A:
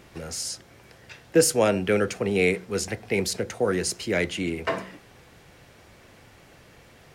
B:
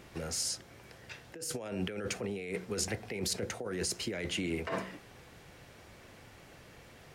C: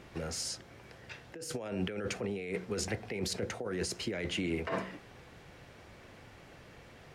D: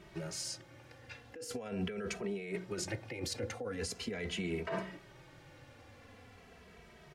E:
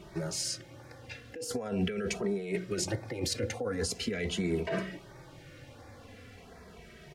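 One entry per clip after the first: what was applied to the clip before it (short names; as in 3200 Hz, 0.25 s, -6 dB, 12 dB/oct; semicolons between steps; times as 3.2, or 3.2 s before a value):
negative-ratio compressor -29 dBFS, ratio -1; gain -7 dB
high shelf 6800 Hz -10 dB; gain +1 dB
endless flanger 2.7 ms -0.42 Hz
LFO notch sine 1.4 Hz 830–3000 Hz; gain +6.5 dB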